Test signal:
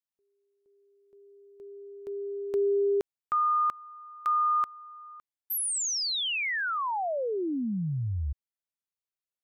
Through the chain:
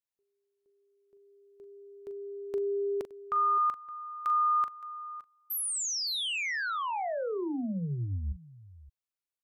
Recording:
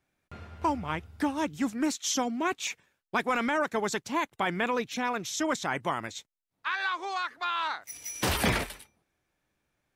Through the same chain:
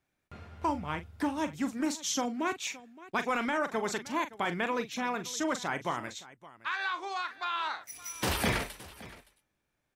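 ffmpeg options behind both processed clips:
-af "aecho=1:1:41|568:0.282|0.119,volume=-3dB"

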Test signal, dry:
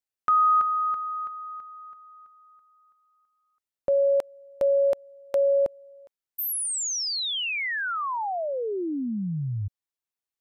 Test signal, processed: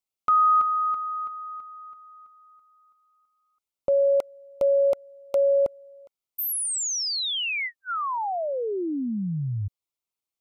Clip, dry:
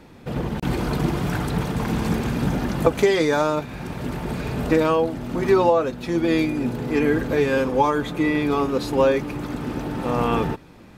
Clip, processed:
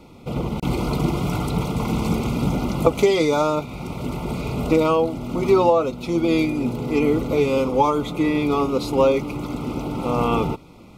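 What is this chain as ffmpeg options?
-af "asuperstop=centerf=1700:order=12:qfactor=3,volume=1dB"

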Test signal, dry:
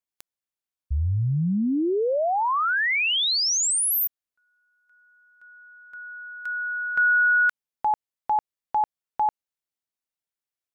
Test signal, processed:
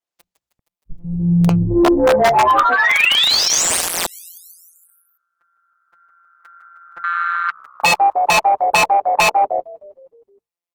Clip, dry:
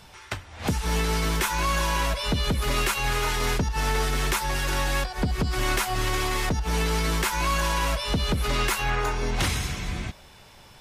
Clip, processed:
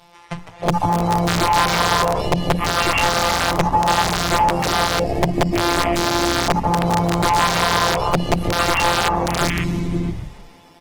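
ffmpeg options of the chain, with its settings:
-filter_complex "[0:a]afftfilt=real='hypot(re,im)*cos(PI*b)':imag='0':win_size=1024:overlap=0.75,asplit=2[a][b];[b]asplit=7[c][d][e][f][g][h][i];[c]adelay=156,afreqshift=-66,volume=-12dB[j];[d]adelay=312,afreqshift=-132,volume=-16dB[k];[e]adelay=468,afreqshift=-198,volume=-20dB[l];[f]adelay=624,afreqshift=-264,volume=-24dB[m];[g]adelay=780,afreqshift=-330,volume=-28.1dB[n];[h]adelay=936,afreqshift=-396,volume=-32.1dB[o];[i]adelay=1092,afreqshift=-462,volume=-36.1dB[p];[j][k][l][m][n][o][p]amix=inputs=7:normalize=0[q];[a][q]amix=inputs=2:normalize=0,afwtdn=0.0282,equalizer=f=1.5k:w=5.4:g=-7.5,bandreject=f=60:t=h:w=6,bandreject=f=120:t=h:w=6,bandreject=f=180:t=h:w=6,aeval=exprs='(mod(9.44*val(0)+1,2)-1)/9.44':c=same,acompressor=threshold=-38dB:ratio=1.5:attack=29:release=97:knee=6:detection=rms,equalizer=f=730:w=0.55:g=8,asoftclip=type=tanh:threshold=-20dB,acrossover=split=8900[r][s];[s]acompressor=threshold=-44dB:ratio=4:attack=1:release=60[t];[r][t]amix=inputs=2:normalize=0,alimiter=level_in=23.5dB:limit=-1dB:release=50:level=0:latency=1,volume=-6.5dB" -ar 48000 -c:a libopus -b:a 16k

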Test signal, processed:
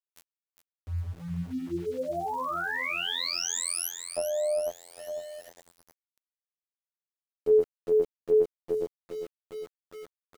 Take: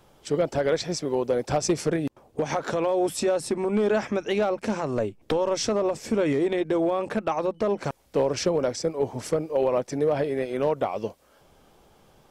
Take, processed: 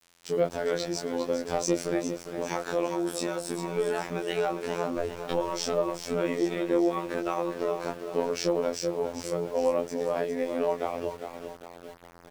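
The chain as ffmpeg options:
-af "aecho=1:1:404|808|1212|1616|2020|2424:0.355|0.181|0.0923|0.0471|0.024|0.0122,flanger=delay=19:depth=2.7:speed=0.2,bandreject=f=50:t=h:w=6,bandreject=f=100:t=h:w=6,bandreject=f=150:t=h:w=6,afftfilt=real='hypot(re,im)*cos(PI*b)':imag='0':win_size=2048:overlap=0.75,adynamicequalizer=threshold=0.00447:dfrequency=190:dqfactor=1.7:tfrequency=190:tqfactor=1.7:attack=5:release=100:ratio=0.375:range=1.5:mode=cutabove:tftype=bell,aeval=exprs='val(0)*gte(abs(val(0)),0.00398)':c=same,volume=3dB"

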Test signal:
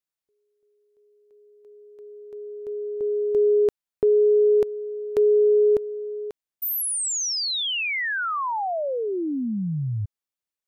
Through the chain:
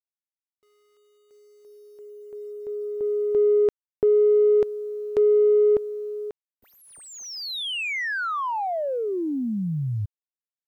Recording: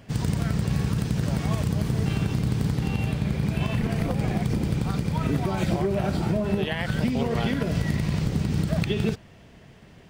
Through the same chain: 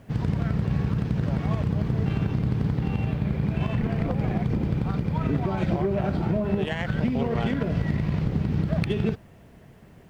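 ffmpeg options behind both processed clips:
-af "adynamicsmooth=sensitivity=1.5:basefreq=2.4k,acrusher=bits=10:mix=0:aa=0.000001"

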